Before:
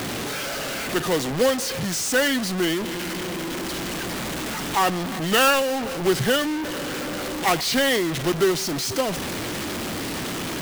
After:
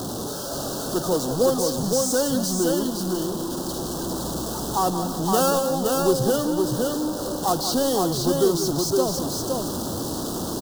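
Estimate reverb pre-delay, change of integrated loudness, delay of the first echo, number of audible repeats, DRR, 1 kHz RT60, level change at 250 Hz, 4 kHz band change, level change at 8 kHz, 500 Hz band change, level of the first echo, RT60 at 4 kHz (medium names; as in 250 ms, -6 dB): no reverb, 0.0 dB, 182 ms, 2, no reverb, no reverb, +2.0 dB, -4.5 dB, +1.5 dB, +2.0 dB, -10.0 dB, no reverb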